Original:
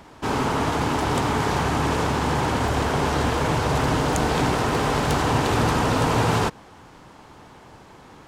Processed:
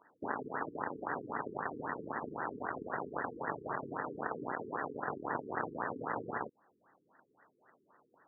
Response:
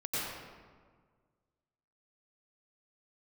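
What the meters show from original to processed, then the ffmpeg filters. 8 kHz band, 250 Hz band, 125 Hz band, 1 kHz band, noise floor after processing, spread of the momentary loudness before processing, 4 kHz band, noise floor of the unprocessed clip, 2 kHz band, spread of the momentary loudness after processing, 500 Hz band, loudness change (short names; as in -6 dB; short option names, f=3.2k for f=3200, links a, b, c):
under -40 dB, -19.5 dB, -28.5 dB, -15.5 dB, -75 dBFS, 2 LU, under -40 dB, -48 dBFS, -14.0 dB, 3 LU, -16.5 dB, -17.5 dB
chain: -af "acompressor=threshold=-36dB:ratio=4,aeval=exprs='0.0841*(cos(1*acos(clip(val(0)/0.0841,-1,1)))-cos(1*PI/2))+0.0237*(cos(3*acos(clip(val(0)/0.0841,-1,1)))-cos(3*PI/2))+0.00473*(cos(5*acos(clip(val(0)/0.0841,-1,1)))-cos(5*PI/2))+0.00596*(cos(7*acos(clip(val(0)/0.0841,-1,1)))-cos(7*PI/2))':c=same,highpass=220,tiltshelf=f=1.4k:g=-8,afftfilt=real='re*lt(b*sr/1024,450*pow(2000/450,0.5+0.5*sin(2*PI*3.8*pts/sr)))':imag='im*lt(b*sr/1024,450*pow(2000/450,0.5+0.5*sin(2*PI*3.8*pts/sr)))':win_size=1024:overlap=0.75,volume=14.5dB"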